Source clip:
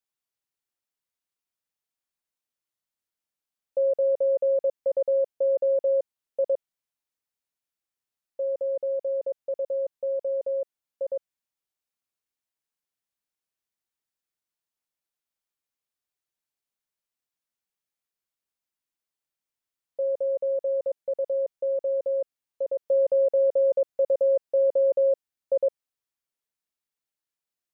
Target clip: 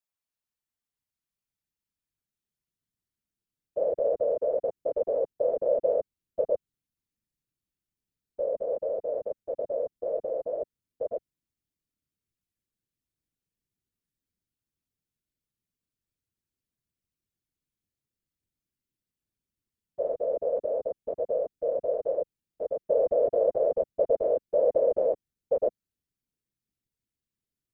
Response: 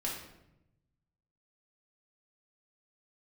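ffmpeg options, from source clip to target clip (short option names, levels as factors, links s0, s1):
-af "asubboost=boost=10.5:cutoff=240,afftfilt=real='hypot(re,im)*cos(2*PI*random(0))':imag='hypot(re,im)*sin(2*PI*random(1))':win_size=512:overlap=0.75,volume=1.33"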